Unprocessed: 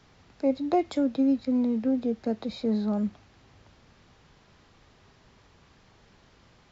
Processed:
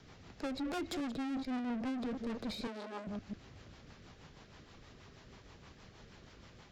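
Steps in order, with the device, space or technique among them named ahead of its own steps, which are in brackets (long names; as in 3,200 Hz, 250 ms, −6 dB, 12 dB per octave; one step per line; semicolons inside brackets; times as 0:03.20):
delay that plays each chunk backwards 145 ms, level −13.5 dB
overdriven rotary cabinet (tube saturation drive 39 dB, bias 0.3; rotating-speaker cabinet horn 6.3 Hz)
0:02.67–0:03.07: Butterworth high-pass 240 Hz 72 dB per octave
level +4.5 dB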